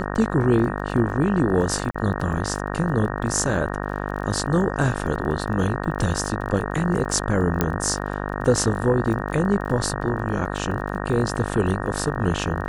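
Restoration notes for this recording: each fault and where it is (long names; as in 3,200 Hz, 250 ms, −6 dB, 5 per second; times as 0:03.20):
mains buzz 50 Hz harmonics 37 −28 dBFS
surface crackle 25 per second −32 dBFS
0:01.91–0:01.95: drop-out 35 ms
0:07.61: click −5 dBFS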